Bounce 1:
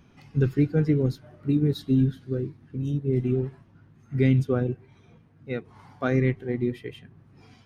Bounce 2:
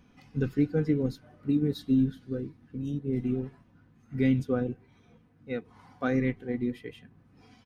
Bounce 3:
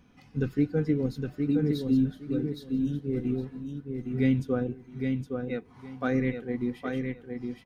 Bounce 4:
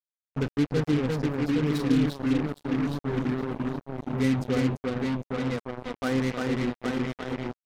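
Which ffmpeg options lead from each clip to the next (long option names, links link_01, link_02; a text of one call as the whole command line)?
ffmpeg -i in.wav -af "aecho=1:1:4:0.42,volume=-4dB" out.wav
ffmpeg -i in.wav -af "aecho=1:1:814|1628|2442:0.562|0.112|0.0225" out.wav
ffmpeg -i in.wav -af "aecho=1:1:347:0.708,acrusher=bits=4:mix=0:aa=0.5" out.wav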